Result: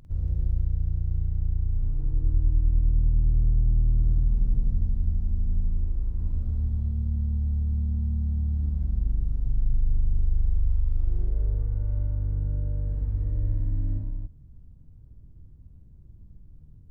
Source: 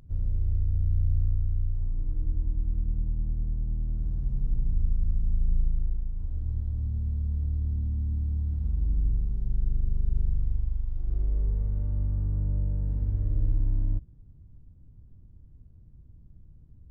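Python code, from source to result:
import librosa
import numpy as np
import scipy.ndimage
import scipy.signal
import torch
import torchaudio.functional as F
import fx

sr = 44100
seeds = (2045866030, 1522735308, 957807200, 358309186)

y = fx.rider(x, sr, range_db=10, speed_s=0.5)
y = fx.echo_multitap(y, sr, ms=(49, 103, 118, 186, 281), db=(-3.0, -16.5, -8.5, -12.5, -6.0))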